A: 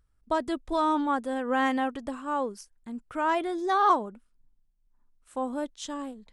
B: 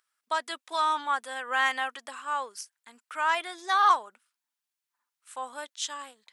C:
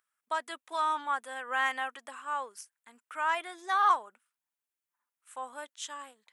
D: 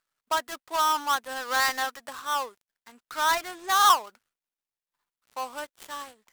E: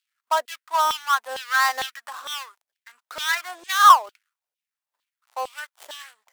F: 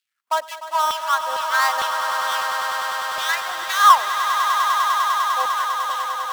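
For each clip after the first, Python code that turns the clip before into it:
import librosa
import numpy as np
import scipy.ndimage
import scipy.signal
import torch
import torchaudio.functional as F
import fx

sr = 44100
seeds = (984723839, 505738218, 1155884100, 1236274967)

y1 = scipy.signal.sosfilt(scipy.signal.butter(2, 1400.0, 'highpass', fs=sr, output='sos'), x)
y1 = F.gain(torch.from_numpy(y1), 7.0).numpy()
y2 = fx.peak_eq(y1, sr, hz=4600.0, db=-8.0, octaves=1.0)
y2 = F.gain(torch.from_numpy(y2), -3.0).numpy()
y3 = fx.dead_time(y2, sr, dead_ms=0.14)
y3 = F.gain(torch.from_numpy(y3), 6.5).numpy()
y4 = fx.filter_lfo_highpass(y3, sr, shape='saw_down', hz=2.2, low_hz=470.0, high_hz=3200.0, q=2.7)
y5 = fx.echo_swell(y4, sr, ms=100, loudest=8, wet_db=-10.5)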